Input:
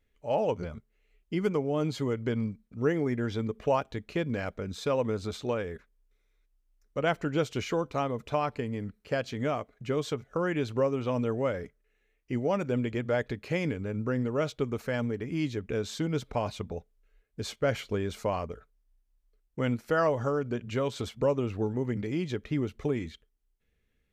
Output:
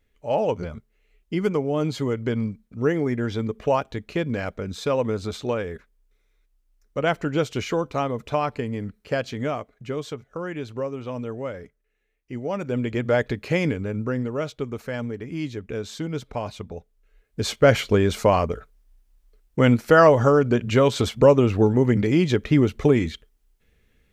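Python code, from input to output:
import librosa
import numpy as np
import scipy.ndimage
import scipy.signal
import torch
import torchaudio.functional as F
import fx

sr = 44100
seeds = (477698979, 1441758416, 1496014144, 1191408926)

y = fx.gain(x, sr, db=fx.line((9.2, 5.0), (10.32, -2.0), (12.34, -2.0), (13.08, 7.5), (13.64, 7.5), (14.47, 1.0), (16.75, 1.0), (17.59, 12.0)))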